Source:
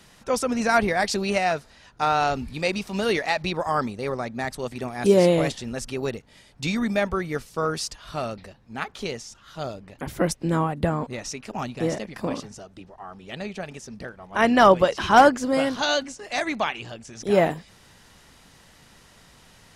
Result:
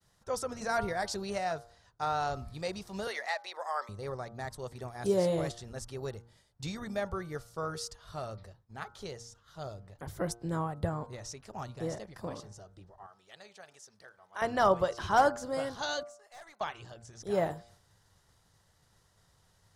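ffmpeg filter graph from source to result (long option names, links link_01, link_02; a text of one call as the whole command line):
ffmpeg -i in.wav -filter_complex "[0:a]asettb=1/sr,asplit=3[link_01][link_02][link_03];[link_01]atrim=end=3.074[link_04];[link_02]atrim=start=3.07:end=3.89,asetpts=PTS-STARTPTS,afade=type=in:duration=0.004:curve=qsin,afade=type=out:start_time=0.816:duration=0.004:curve=qsin,highpass=frequency=560:width=0.5412,highpass=frequency=560:width=1.3066,equalizer=frequency=2000:width_type=o:width=0.35:gain=7[link_05];[link_03]atrim=start=3.886[link_06];[link_04][link_05]acrossfade=duration=0.004:curve1=hsin:curve2=qsin[link_07];[link_07][link_06]acrossfade=duration=0.004:curve1=qsin:curve2=hsin,asettb=1/sr,asplit=3[link_08][link_09][link_10];[link_08]atrim=end=13.064[link_11];[link_09]atrim=start=13.06:end=14.42,asetpts=PTS-STARTPTS,afade=type=in:duration=0.004:curve=qsin,afade=type=out:start_time=1.356:duration=0.004:curve=qsin,highpass=frequency=1400:poles=1,acompressor=mode=upward:threshold=-43dB:ratio=2.5:attack=3.2:release=140:knee=2.83:detection=peak[link_12];[link_10]atrim=start=14.416[link_13];[link_11][link_12]acrossfade=duration=0.004:curve1=hsin:curve2=qsin[link_14];[link_14][link_13]acrossfade=duration=0.004:curve1=qsin:curve2=hsin,asettb=1/sr,asplit=3[link_15][link_16][link_17];[link_15]atrim=end=16.034[link_18];[link_16]atrim=start=16.03:end=16.61,asetpts=PTS-STARTPTS,afade=type=in:duration=0.004:curve=qsin,afade=type=out:start_time=0.576:duration=0.004:curve=qsin,highpass=960,equalizer=frequency=3600:width=0.35:gain=-9.5,aeval=exprs='(tanh(50.1*val(0)+0.15)-tanh(0.15))/50.1':channel_layout=same[link_19];[link_17]atrim=start=16.606[link_20];[link_18][link_19]acrossfade=duration=0.004:curve1=hsin:curve2=qsin[link_21];[link_21][link_20]acrossfade=duration=0.004:curve1=qsin:curve2=hsin,bandreject=frequency=117.3:width_type=h:width=4,bandreject=frequency=234.6:width_type=h:width=4,bandreject=frequency=351.9:width_type=h:width=4,bandreject=frequency=469.2:width_type=h:width=4,bandreject=frequency=586.5:width_type=h:width=4,bandreject=frequency=703.8:width_type=h:width=4,bandreject=frequency=821.1:width_type=h:width=4,bandreject=frequency=938.4:width_type=h:width=4,bandreject=frequency=1055.7:width_type=h:width=4,bandreject=frequency=1173:width_type=h:width=4,bandreject=frequency=1290.3:width_type=h:width=4,bandreject=frequency=1407.6:width_type=h:width=4,bandreject=frequency=1524.9:width_type=h:width=4,agate=range=-33dB:threshold=-47dB:ratio=3:detection=peak,equalizer=frequency=100:width_type=o:width=0.67:gain=9,equalizer=frequency=250:width_type=o:width=0.67:gain=-9,equalizer=frequency=2500:width_type=o:width=0.67:gain=-10,volume=-9dB" out.wav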